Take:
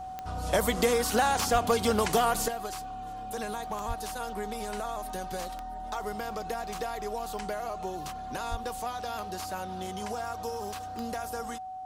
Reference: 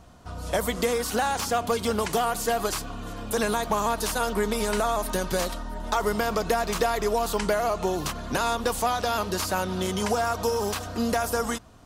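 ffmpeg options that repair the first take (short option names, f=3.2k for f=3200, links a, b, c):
-filter_complex "[0:a]adeclick=t=4,bandreject=f=750:w=30,asplit=3[a][b][c];[a]afade=t=out:st=1.52:d=0.02[d];[b]highpass=f=140:w=0.5412,highpass=f=140:w=1.3066,afade=t=in:st=1.52:d=0.02,afade=t=out:st=1.64:d=0.02[e];[c]afade=t=in:st=1.64:d=0.02[f];[d][e][f]amix=inputs=3:normalize=0,asplit=3[g][h][i];[g]afade=t=out:st=3.87:d=0.02[j];[h]highpass=f=140:w=0.5412,highpass=f=140:w=1.3066,afade=t=in:st=3.87:d=0.02,afade=t=out:st=3.99:d=0.02[k];[i]afade=t=in:st=3.99:d=0.02[l];[j][k][l]amix=inputs=3:normalize=0,asplit=3[m][n][o];[m]afade=t=out:st=8.5:d=0.02[p];[n]highpass=f=140:w=0.5412,highpass=f=140:w=1.3066,afade=t=in:st=8.5:d=0.02,afade=t=out:st=8.62:d=0.02[q];[o]afade=t=in:st=8.62:d=0.02[r];[p][q][r]amix=inputs=3:normalize=0,asetnsamples=n=441:p=0,asendcmd='2.48 volume volume 11dB',volume=0dB"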